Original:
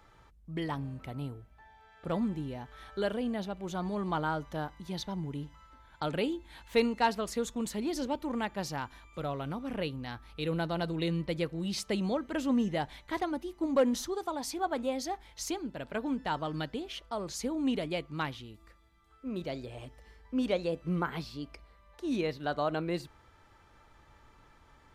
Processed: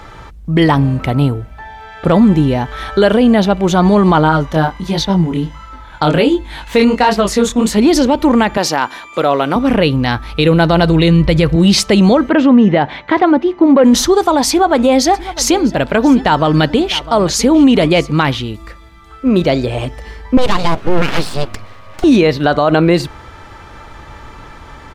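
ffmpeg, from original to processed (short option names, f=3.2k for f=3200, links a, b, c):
-filter_complex "[0:a]asplit=3[a][b][c];[a]afade=t=out:st=4.21:d=0.02[d];[b]flanger=delay=19:depth=6.6:speed=1.4,afade=t=in:st=4.21:d=0.02,afade=t=out:st=7.77:d=0.02[e];[c]afade=t=in:st=7.77:d=0.02[f];[d][e][f]amix=inputs=3:normalize=0,asettb=1/sr,asplit=3[g][h][i];[g]atrim=end=8.574[j];[h]atrim=start=8.57:end=9.56,asetpts=PTS-STARTPTS,afade=t=in:d=0.004:c=qsin,afade=t=out:st=0.986:d=0.004:c=qsin,highpass=300[k];[i]atrim=start=9.556[l];[j][k]acrossfade=d=0.004:c1=hsin:c2=qsin[m];[m][l]acrossfade=d=0.004:c1=qsin:c2=hsin,asettb=1/sr,asplit=3[n][o][p];[n]atrim=end=10.454[q];[o]atrim=start=10.45:end=11.56,asetpts=PTS-STARTPTS,afade=t=in:d=0.004:c=qsin,afade=t=out:st=1.106:d=0.004:c=qsin,asubboost=boost=11.5:cutoff=120[r];[p]atrim=start=11.556[s];[q][r]acrossfade=d=0.004:c1=hsin:c2=qsin[t];[t][s]acrossfade=d=0.004:c1=qsin:c2=hsin,asettb=1/sr,asplit=3[u][v][w];[u]atrim=end=12.294[x];[v]atrim=start=12.29:end=13.84,asetpts=PTS-STARTPTS,afade=t=in:d=0.004:c=qsin,afade=t=out:st=1.546:d=0.004:c=qsin,highpass=140,lowpass=2.6k[y];[w]atrim=start=13.836[z];[x][y]acrossfade=d=0.004:c1=hsin:c2=qsin[aa];[aa][z]acrossfade=d=0.004:c1=qsin:c2=hsin,asplit=3[ab][ac][ad];[ab]afade=t=out:st=15.13:d=0.02[ae];[ac]aecho=1:1:651:0.106,afade=t=in:st=15.13:d=0.02,afade=t=out:st=18.1:d=0.02[af];[ad]afade=t=in:st=18.1:d=0.02[ag];[ae][af][ag]amix=inputs=3:normalize=0,asettb=1/sr,asplit=3[ah][ai][aj];[ah]atrim=end=20.374[ak];[ai]atrim=start=20.37:end=22.04,asetpts=PTS-STARTPTS,afade=t=in:d=0.004:c=qsin,afade=t=out:st=1.666:d=0.004:c=qsin,aeval=exprs='abs(val(0))':c=same[al];[aj]atrim=start=22.036[am];[ak][al]acrossfade=d=0.004:c1=hsin:c2=qsin[an];[an][am]acrossfade=d=0.004:c1=qsin:c2=hsin,highshelf=f=8.8k:g=-8,alimiter=level_in=26.5dB:limit=-1dB:release=50:level=0:latency=1,volume=-1dB"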